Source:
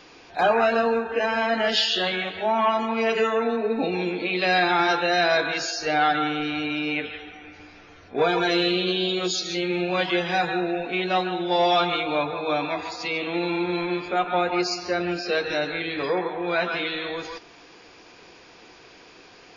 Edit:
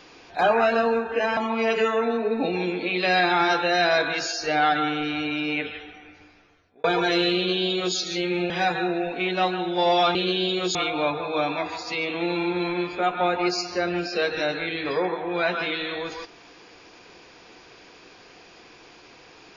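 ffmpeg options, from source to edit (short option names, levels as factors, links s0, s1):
-filter_complex "[0:a]asplit=6[s0][s1][s2][s3][s4][s5];[s0]atrim=end=1.372[s6];[s1]atrim=start=2.758:end=8.23,asetpts=PTS-STARTPTS,afade=t=out:st=4.312:d=1.16[s7];[s2]atrim=start=8.23:end=9.892,asetpts=PTS-STARTPTS,afade=t=in:d=0.004:c=hsin[s8];[s3]atrim=start=10.228:end=11.882[s9];[s4]atrim=start=8.748:end=9.352[s10];[s5]atrim=start=11.878[s11];[s7][s8]concat=n=2:v=0:a=1[s12];[s6][s12]acrossfade=d=0.004:c1=hsin:c2=hsin[s13];[s13][s9]acrossfade=d=0.004:c1=hsin:c2=hsin[s14];[s14][s10]acrossfade=d=0.004:c1=hsin:c2=hsin[s15];[s15][s11]acrossfade=d=0.004:c1=hsin:c2=hsin"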